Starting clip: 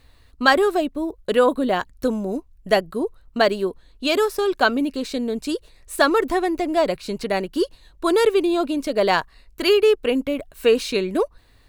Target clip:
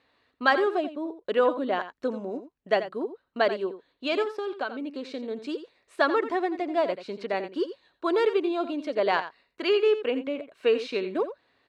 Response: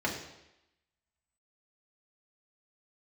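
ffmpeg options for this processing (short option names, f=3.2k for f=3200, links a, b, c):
-filter_complex "[0:a]asettb=1/sr,asplit=3[a][b][c];[a]atrim=end=4.224[d];[b]atrim=start=4.22:end=5.31,asetpts=PTS-STARTPTS,afade=t=in:d=0.004:c=qsin,afade=t=out:st=1.086:d=0.004:c=qsin,acompressor=threshold=-22dB:ratio=6[e];[c]atrim=start=5.306[f];[d][e]acrossfade=d=0.004:c1=hsin:c2=qsin[g];[g][f]acrossfade=d=0.004:c1=qsin:c2=hsin,highpass=280,lowpass=3.3k,asplit=2[h][i];[i]aecho=0:1:86:0.251[j];[h][j]amix=inputs=2:normalize=0,volume=-5.5dB"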